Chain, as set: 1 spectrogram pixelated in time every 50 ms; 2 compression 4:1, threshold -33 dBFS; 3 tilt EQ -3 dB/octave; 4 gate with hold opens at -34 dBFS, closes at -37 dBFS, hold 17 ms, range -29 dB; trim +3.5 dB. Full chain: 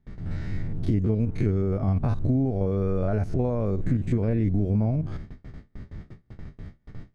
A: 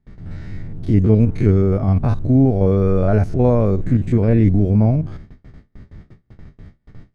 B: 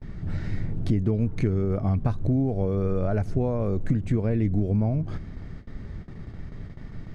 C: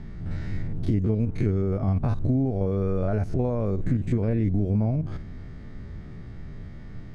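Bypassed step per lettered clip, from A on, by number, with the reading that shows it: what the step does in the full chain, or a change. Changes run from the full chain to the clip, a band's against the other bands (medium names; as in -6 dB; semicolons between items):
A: 2, mean gain reduction 5.0 dB; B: 1, momentary loudness spread change -3 LU; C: 4, momentary loudness spread change -3 LU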